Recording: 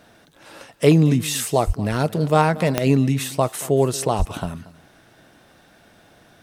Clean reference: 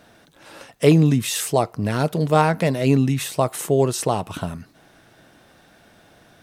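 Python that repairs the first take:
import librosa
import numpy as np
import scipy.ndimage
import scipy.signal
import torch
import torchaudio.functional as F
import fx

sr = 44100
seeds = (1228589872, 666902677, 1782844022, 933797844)

y = fx.fix_declick_ar(x, sr, threshold=10.0)
y = fx.fix_deplosive(y, sr, at_s=(1.66, 4.18))
y = fx.fix_echo_inverse(y, sr, delay_ms=231, level_db=-19.0)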